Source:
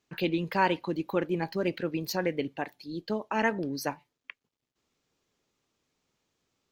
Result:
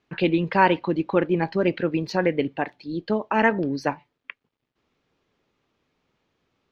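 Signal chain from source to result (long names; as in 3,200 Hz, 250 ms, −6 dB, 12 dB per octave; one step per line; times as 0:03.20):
low-pass filter 3,100 Hz 12 dB per octave
level +7.5 dB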